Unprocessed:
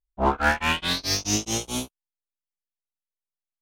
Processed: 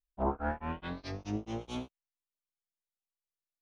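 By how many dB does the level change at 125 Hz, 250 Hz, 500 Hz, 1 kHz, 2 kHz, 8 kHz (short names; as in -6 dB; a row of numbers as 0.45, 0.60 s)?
-7.5, -7.5, -8.0, -12.0, -19.5, -31.5 dB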